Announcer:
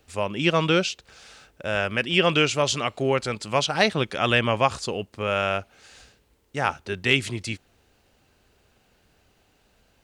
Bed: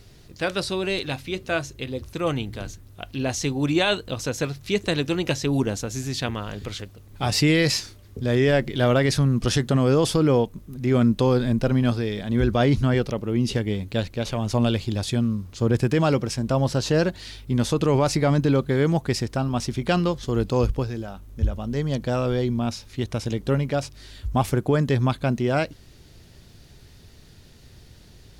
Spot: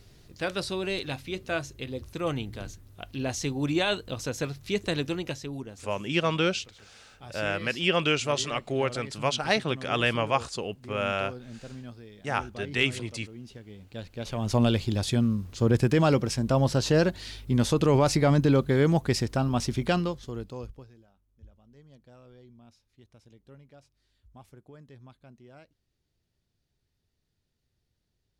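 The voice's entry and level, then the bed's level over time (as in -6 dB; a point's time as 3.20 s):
5.70 s, -4.5 dB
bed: 5.05 s -5 dB
5.92 s -21.5 dB
13.68 s -21.5 dB
14.52 s -1.5 dB
19.82 s -1.5 dB
21.16 s -29.5 dB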